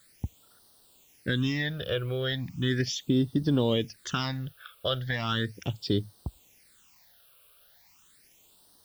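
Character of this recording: a quantiser's noise floor 10-bit, dither triangular; phasing stages 8, 0.37 Hz, lowest notch 250–2300 Hz

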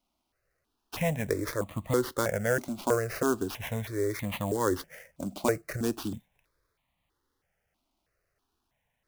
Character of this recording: aliases and images of a low sample rate 8 kHz, jitter 20%; notches that jump at a steady rate 3.1 Hz 470–1500 Hz

